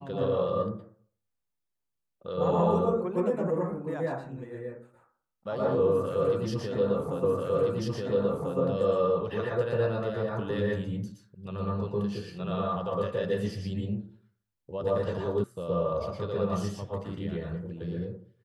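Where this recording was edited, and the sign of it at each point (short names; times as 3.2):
7.24 repeat of the last 1.34 s
15.44 sound cut off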